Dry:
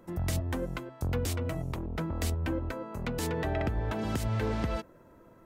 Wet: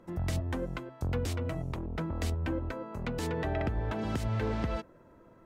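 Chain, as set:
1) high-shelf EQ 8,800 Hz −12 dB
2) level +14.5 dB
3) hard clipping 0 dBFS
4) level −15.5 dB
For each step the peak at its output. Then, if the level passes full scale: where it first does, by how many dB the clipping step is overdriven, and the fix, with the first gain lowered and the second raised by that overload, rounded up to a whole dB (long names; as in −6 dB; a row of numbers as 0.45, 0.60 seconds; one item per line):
−19.5, −5.0, −5.0, −20.5 dBFS
no step passes full scale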